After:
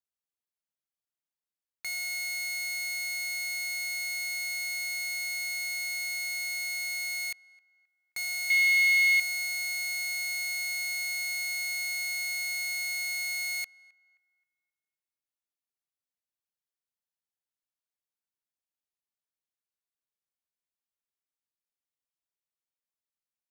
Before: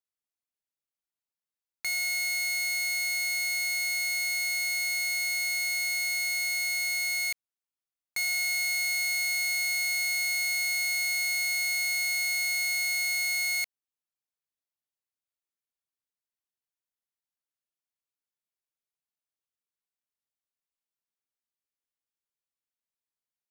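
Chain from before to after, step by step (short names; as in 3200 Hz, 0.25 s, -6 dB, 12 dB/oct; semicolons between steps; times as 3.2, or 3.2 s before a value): 8.5–9.2 band shelf 2800 Hz +12.5 dB 1.2 oct; on a send: narrowing echo 0.264 s, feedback 40%, band-pass 1200 Hz, level -23 dB; on the sum: gain -4.5 dB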